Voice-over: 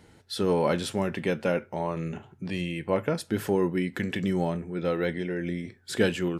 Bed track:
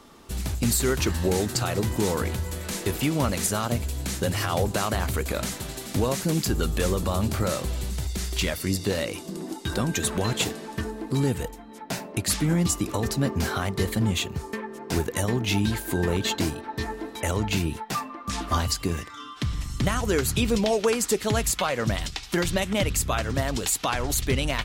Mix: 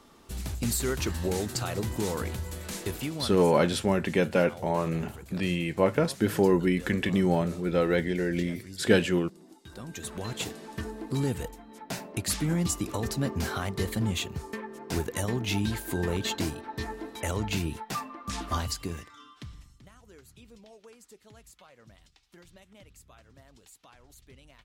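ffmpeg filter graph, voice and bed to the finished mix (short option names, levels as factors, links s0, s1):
-filter_complex "[0:a]adelay=2900,volume=1.33[s0];[1:a]volume=2.82,afade=t=out:st=2.82:d=0.62:silence=0.211349,afade=t=in:st=9.7:d=1.26:silence=0.188365,afade=t=out:st=18.39:d=1.4:silence=0.0562341[s1];[s0][s1]amix=inputs=2:normalize=0"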